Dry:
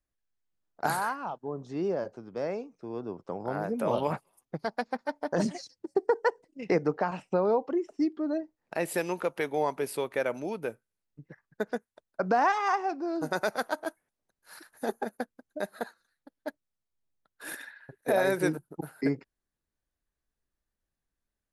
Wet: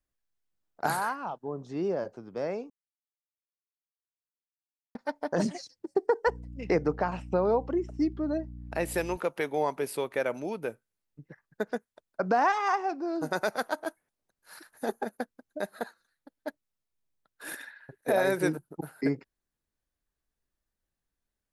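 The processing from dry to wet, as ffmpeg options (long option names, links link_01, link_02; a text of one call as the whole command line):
ffmpeg -i in.wav -filter_complex "[0:a]asettb=1/sr,asplit=3[link_01][link_02][link_03];[link_01]atrim=end=6.274[link_04];[link_02]atrim=start=6.27:end=9.17,asetpts=PTS-STARTPTS,afade=type=in:duration=0.004:curve=qsin,afade=type=out:start_time=2.896:duration=0.004:curve=qsin,aeval=exprs='val(0)+0.00891*(sin(2*PI*60*n/s)+sin(2*PI*2*60*n/s)/2+sin(2*PI*3*60*n/s)/3+sin(2*PI*4*60*n/s)/4+sin(2*PI*5*60*n/s)/5)':channel_layout=same[link_05];[link_03]atrim=start=9.166[link_06];[link_04][link_05]acrossfade=duration=0.004:curve1=hsin:curve2=qsin[link_07];[link_07][link_06]acrossfade=duration=0.004:curve1=qsin:curve2=hsin,asplit=3[link_08][link_09][link_10];[link_08]atrim=end=2.7,asetpts=PTS-STARTPTS,afade=type=out:start_time=2.696:duration=0.004:curve=hsin[link_11];[link_09]atrim=start=2.7:end=4.95,asetpts=PTS-STARTPTS,volume=0[link_12];[link_10]atrim=start=4.95,asetpts=PTS-STARTPTS,afade=type=in:duration=0.004:curve=hsin[link_13];[link_11][link_12][link_13]concat=n=3:v=0:a=1" out.wav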